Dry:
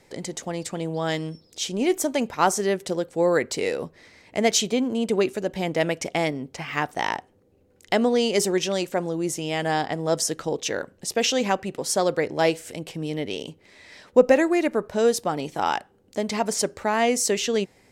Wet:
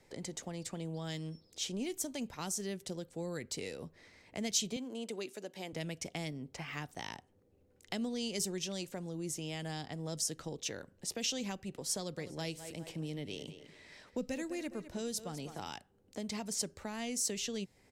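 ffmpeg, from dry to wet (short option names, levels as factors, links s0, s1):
-filter_complex "[0:a]asettb=1/sr,asplit=3[s0][s1][s2];[s0]atrim=end=4.764[s3];[s1]atrim=start=4.76:end=5.73,asetpts=PTS-STARTPTS,afade=t=in:d=0.004:c=qsin,afade=t=out:st=0.966:d=0.004:c=qsin,highpass=330[s4];[s2]atrim=start=5.726[s5];[s3][s4]acrossfade=d=0.004:c1=hsin:c2=qsin[s6];[s6][s5]acrossfade=d=0.004:c1=qsin:c2=hsin,asplit=3[s7][s8][s9];[s7]afade=t=out:st=12.16:d=0.02[s10];[s8]aecho=1:1:204|408|612:0.188|0.0546|0.0158,afade=t=in:st=12.16:d=0.02,afade=t=out:st=15.68:d=0.02[s11];[s9]afade=t=in:st=15.68:d=0.02[s12];[s10][s11][s12]amix=inputs=3:normalize=0,lowshelf=f=78:g=6,acrossover=split=230|3000[s13][s14][s15];[s14]acompressor=threshold=0.02:ratio=6[s16];[s13][s16][s15]amix=inputs=3:normalize=0,volume=0.355"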